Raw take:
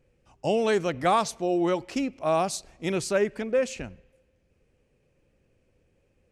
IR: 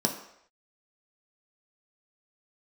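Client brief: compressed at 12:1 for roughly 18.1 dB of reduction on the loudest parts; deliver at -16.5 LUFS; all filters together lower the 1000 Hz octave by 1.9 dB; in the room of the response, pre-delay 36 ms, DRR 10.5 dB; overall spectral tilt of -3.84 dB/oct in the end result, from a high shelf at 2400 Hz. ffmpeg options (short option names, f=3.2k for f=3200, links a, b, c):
-filter_complex "[0:a]equalizer=f=1k:t=o:g=-4,highshelf=f=2.4k:g=7.5,acompressor=threshold=-38dB:ratio=12,asplit=2[a][b];[1:a]atrim=start_sample=2205,adelay=36[c];[b][c]afir=irnorm=-1:irlink=0,volume=-19.5dB[d];[a][d]amix=inputs=2:normalize=0,volume=24.5dB"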